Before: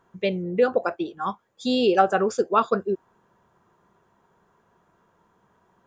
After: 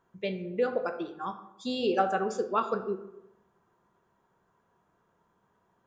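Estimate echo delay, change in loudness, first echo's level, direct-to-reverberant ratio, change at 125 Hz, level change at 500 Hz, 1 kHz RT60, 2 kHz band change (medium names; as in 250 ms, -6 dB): no echo, -7.5 dB, no echo, 8.0 dB, -8.0 dB, -7.5 dB, 0.90 s, -7.0 dB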